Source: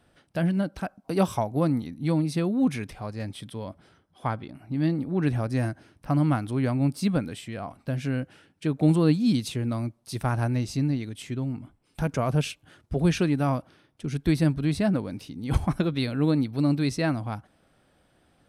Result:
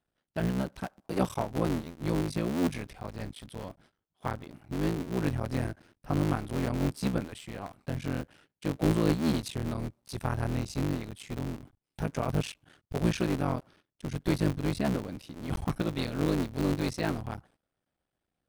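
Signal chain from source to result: cycle switcher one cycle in 3, muted; gate -55 dBFS, range -16 dB; gain -3.5 dB

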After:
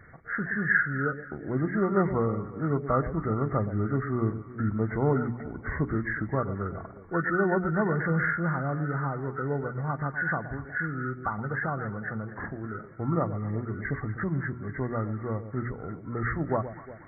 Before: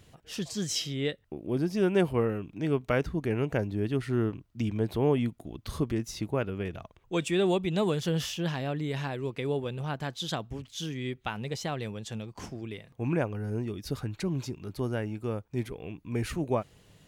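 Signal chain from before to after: nonlinear frequency compression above 1100 Hz 4:1; on a send: echo with dull and thin repeats by turns 0.12 s, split 850 Hz, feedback 61%, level -11.5 dB; on the sum: dynamic EQ 410 Hz, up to -5 dB, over -40 dBFS, Q 0.86; notches 60/120/180/240/300/360/420 Hz; gain +4 dB

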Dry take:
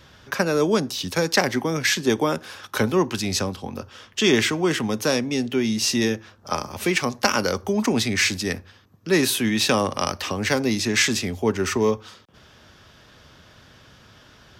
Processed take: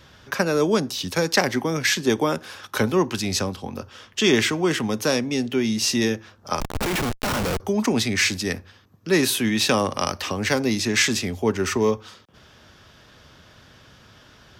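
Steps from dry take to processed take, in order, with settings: 6.6–7.6 Schmitt trigger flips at -27 dBFS

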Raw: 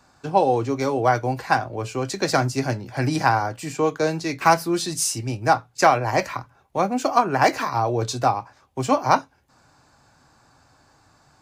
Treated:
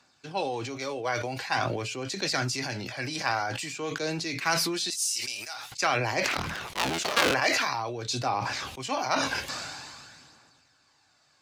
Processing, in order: 6.24–7.34 cycle switcher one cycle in 3, inverted; weighting filter D; flange 0.48 Hz, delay 0 ms, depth 2 ms, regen +59%; 4.9–5.72 differentiator; sustainer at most 27 dB/s; gain -7.5 dB

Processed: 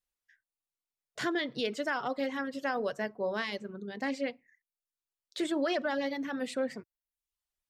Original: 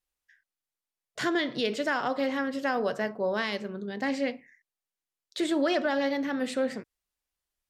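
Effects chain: reverb removal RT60 0.63 s; gain -3.5 dB

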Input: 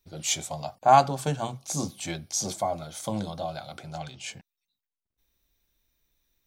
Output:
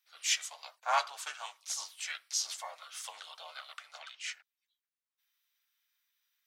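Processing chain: HPF 1300 Hz 24 dB/oct; high shelf 3400 Hz -7 dB; harmoniser -3 st -3 dB

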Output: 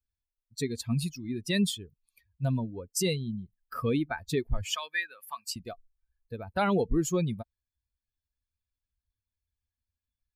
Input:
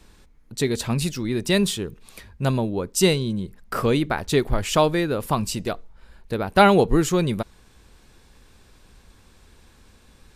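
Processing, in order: per-bin expansion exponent 2; limiter -17 dBFS, peak gain reduction 11 dB; 4.7–5.56 resonant high-pass 1700 Hz, resonance Q 2.2; gain -1.5 dB

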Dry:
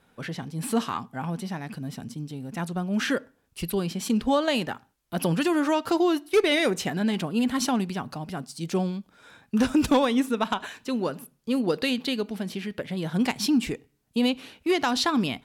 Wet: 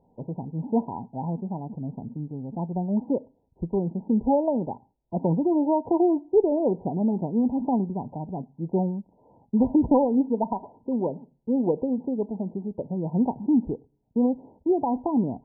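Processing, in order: brick-wall FIR low-pass 1000 Hz; gain +1.5 dB

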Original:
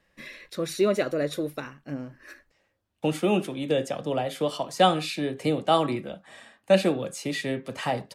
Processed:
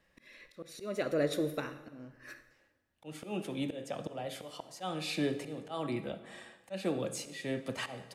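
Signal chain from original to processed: auto swell 0.377 s; on a send: reverb RT60 1.2 s, pre-delay 48 ms, DRR 12 dB; on the sum: gain -3 dB

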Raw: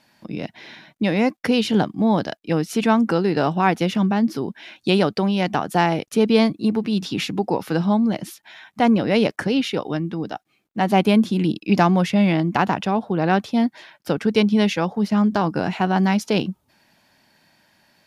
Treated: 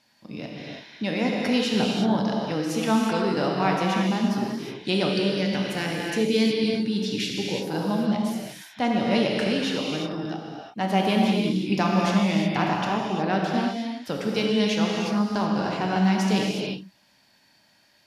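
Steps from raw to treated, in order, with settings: bell 5100 Hz +6 dB 1.8 oct; non-linear reverb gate 0.39 s flat, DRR -2 dB; spectral gain 5.13–7.7, 620–1400 Hz -10 dB; gain -8.5 dB

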